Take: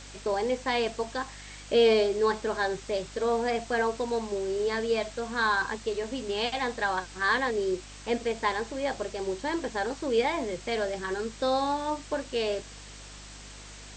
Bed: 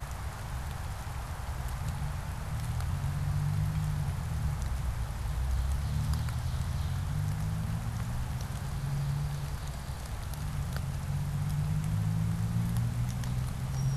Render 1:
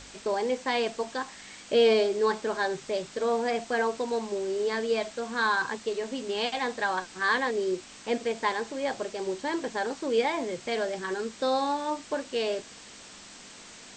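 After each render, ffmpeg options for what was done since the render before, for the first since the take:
-af "bandreject=f=50:t=h:w=4,bandreject=f=100:t=h:w=4,bandreject=f=150:t=h:w=4"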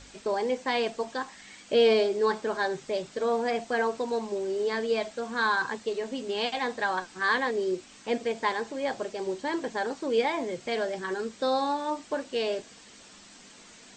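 -af "afftdn=nr=6:nf=-48"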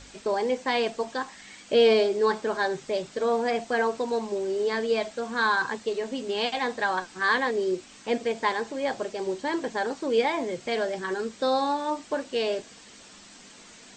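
-af "volume=2dB"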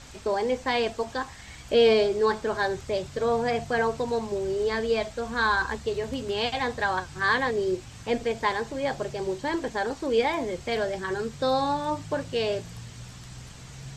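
-filter_complex "[1:a]volume=-11.5dB[a];[0:a][a]amix=inputs=2:normalize=0"

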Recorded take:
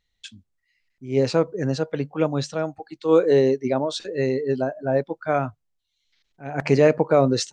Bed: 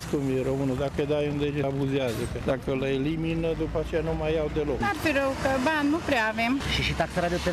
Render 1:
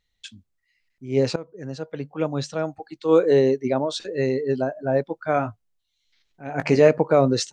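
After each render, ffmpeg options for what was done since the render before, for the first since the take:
-filter_complex "[0:a]asettb=1/sr,asplit=3[a][b][c];[a]atrim=end=3.184[d];[b]atrim=start=3.18:end=3.81,asetpts=PTS-STARTPTS,afade=t=in:d=0.004:c=qsin,afade=t=out:st=0.626:d=0.004:c=qsin,equalizer=f=5.2k:w=6.2:g=-7[e];[c]atrim=start=3.806[f];[d][e]acrossfade=d=0.004:c1=hsin:c2=qsin[g];[g][f]acrossfade=d=0.004:c1=qsin:c2=hsin,asettb=1/sr,asplit=3[h][i][j];[h]atrim=end=5.354[k];[i]atrim=start=5.35:end=6.89,asetpts=PTS-STARTPTS,afade=t=in:d=0.004:c=qsin,afade=t=out:st=1.536:d=0.004:c=qsin,asplit=2[l][m];[m]adelay=18,volume=-8dB[n];[l][n]amix=inputs=2:normalize=0,atrim=end_sample=67914[o];[j]atrim=start=6.886[p];[k][o]acrossfade=d=0.004:c1=hsin:c2=qsin[q];[q][p]acrossfade=d=0.004:c1=qsin:c2=hsin,asplit=2[r][s];[r]atrim=end=1.36,asetpts=PTS-STARTPTS,afade=t=out:st=1.356:d=0.004:c=hsin:silence=0.11885[t];[s]atrim=start=1.36,asetpts=PTS-STARTPTS,afade=t=in:d=1.3:silence=0.11885[u];[t][u]concat=n=2:v=0:a=1"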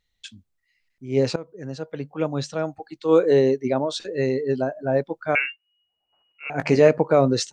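-filter_complex "[0:a]asettb=1/sr,asplit=3[a][b][c];[a]atrim=end=5.354[d];[b]atrim=start=5.35:end=6.5,asetpts=PTS-STARTPTS,afade=t=in:d=0.004:c=qsin,afade=t=out:st=1.146:d=0.004:c=qsin,lowpass=f=2.5k:t=q:w=0.5098,lowpass=f=2.5k:t=q:w=0.6013,lowpass=f=2.5k:t=q:w=0.9,lowpass=f=2.5k:t=q:w=2.563,afreqshift=-2900[e];[c]atrim=start=6.496[f];[d][e]acrossfade=d=0.004:c1=hsin:c2=qsin[g];[g][f]acrossfade=d=0.004:c1=qsin:c2=hsin"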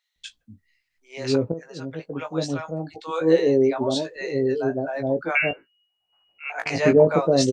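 -filter_complex "[0:a]asplit=2[a][b];[b]adelay=18,volume=-6.5dB[c];[a][c]amix=inputs=2:normalize=0,acrossover=split=690[d][e];[d]adelay=160[f];[f][e]amix=inputs=2:normalize=0"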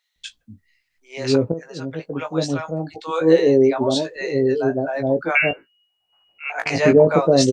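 -af "volume=4dB,alimiter=limit=-3dB:level=0:latency=1"

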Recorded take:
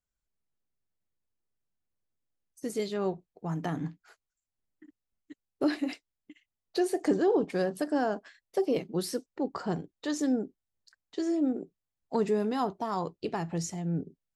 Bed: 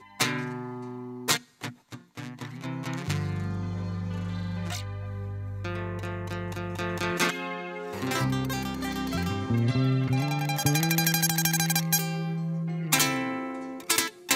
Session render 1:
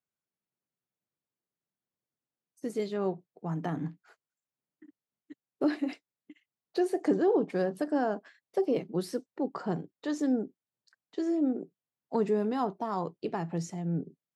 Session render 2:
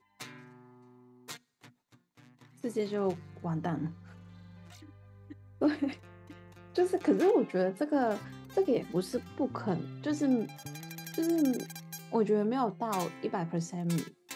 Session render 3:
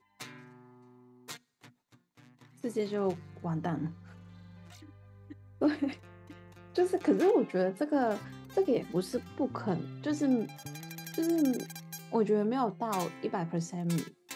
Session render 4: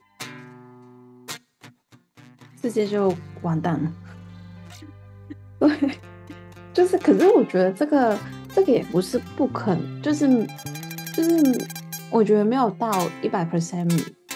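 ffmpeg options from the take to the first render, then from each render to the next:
-af "highpass=f=120:w=0.5412,highpass=f=120:w=1.3066,highshelf=f=2.9k:g=-9"
-filter_complex "[1:a]volume=-19.5dB[a];[0:a][a]amix=inputs=2:normalize=0"
-af anull
-af "volume=10dB"

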